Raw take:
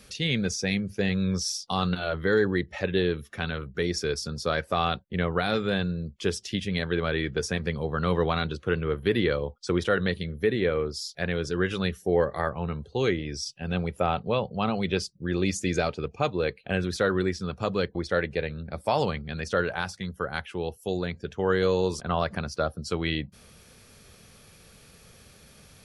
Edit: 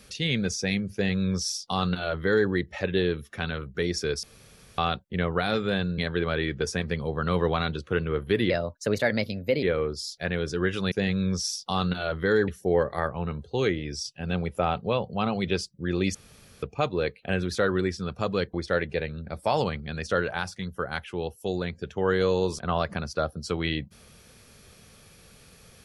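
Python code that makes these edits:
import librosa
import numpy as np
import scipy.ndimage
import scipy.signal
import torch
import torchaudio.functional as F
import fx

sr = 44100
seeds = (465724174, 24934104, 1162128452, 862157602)

y = fx.edit(x, sr, fx.duplicate(start_s=0.93, length_s=1.56, to_s=11.89),
    fx.room_tone_fill(start_s=4.23, length_s=0.55),
    fx.cut(start_s=5.98, length_s=0.76),
    fx.speed_span(start_s=9.26, length_s=1.34, speed=1.19),
    fx.room_tone_fill(start_s=15.56, length_s=0.48), tone=tone)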